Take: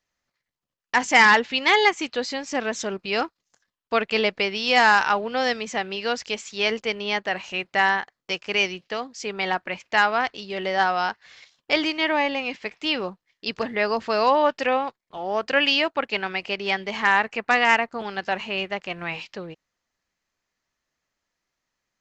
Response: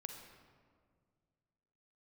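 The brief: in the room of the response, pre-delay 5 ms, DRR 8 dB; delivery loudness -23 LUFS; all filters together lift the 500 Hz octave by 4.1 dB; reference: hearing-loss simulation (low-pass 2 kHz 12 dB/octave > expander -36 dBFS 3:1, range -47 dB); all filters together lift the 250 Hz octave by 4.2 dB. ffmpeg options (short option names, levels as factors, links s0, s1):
-filter_complex "[0:a]equalizer=f=250:t=o:g=4,equalizer=f=500:t=o:g=4,asplit=2[s0][s1];[1:a]atrim=start_sample=2205,adelay=5[s2];[s1][s2]afir=irnorm=-1:irlink=0,volume=0.596[s3];[s0][s3]amix=inputs=2:normalize=0,lowpass=2000,agate=range=0.00447:threshold=0.0158:ratio=3,volume=0.891"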